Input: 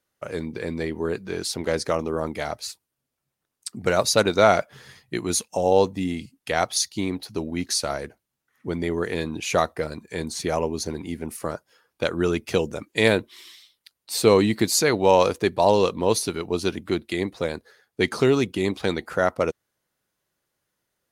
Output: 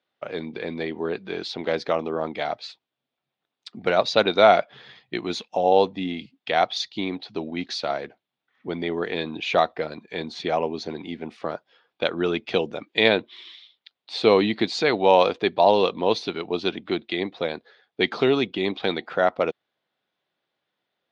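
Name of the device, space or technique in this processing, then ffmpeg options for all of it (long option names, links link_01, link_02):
kitchen radio: -af "highpass=180,equalizer=frequency=730:width_type=q:width=4:gain=6,equalizer=frequency=2400:width_type=q:width=4:gain=3,equalizer=frequency=3500:width_type=q:width=4:gain=8,lowpass=frequency=4200:width=0.5412,lowpass=frequency=4200:width=1.3066,volume=-1dB"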